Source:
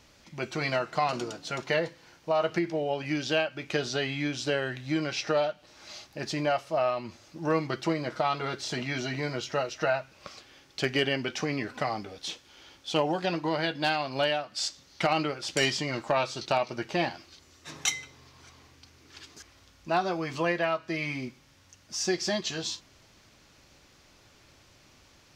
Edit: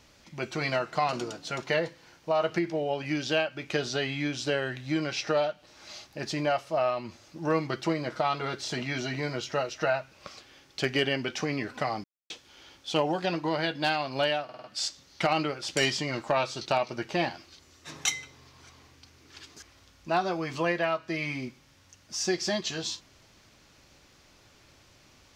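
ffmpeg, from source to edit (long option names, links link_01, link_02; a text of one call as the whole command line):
ffmpeg -i in.wav -filter_complex "[0:a]asplit=7[link_01][link_02][link_03][link_04][link_05][link_06][link_07];[link_01]atrim=end=12.04,asetpts=PTS-STARTPTS,afade=type=out:start_time=12.036:duration=0.004:curve=hsin[link_08];[link_02]atrim=start=12.04:end=12.3,asetpts=PTS-STARTPTS,volume=0[link_09];[link_03]atrim=start=12.3:end=14.492,asetpts=PTS-STARTPTS,afade=type=in:duration=0.004:curve=hsin[link_10];[link_04]atrim=start=14.438:end=14.492[link_11];[link_05]atrim=start=14.438:end=14.492[link_12];[link_06]atrim=start=14.438:end=14.492[link_13];[link_07]atrim=start=14.438[link_14];[link_08][link_09][link_10]concat=n=3:v=0:a=1[link_15];[link_15][link_11]acrossfade=duration=0.004:curve1=hsin:curve2=hsin[link_16];[link_16][link_12]acrossfade=duration=0.004:curve1=hsin:curve2=hsin[link_17];[link_17][link_13]acrossfade=duration=0.004:curve1=hsin:curve2=hsin[link_18];[link_18][link_14]acrossfade=duration=0.004:curve1=hsin:curve2=hsin" out.wav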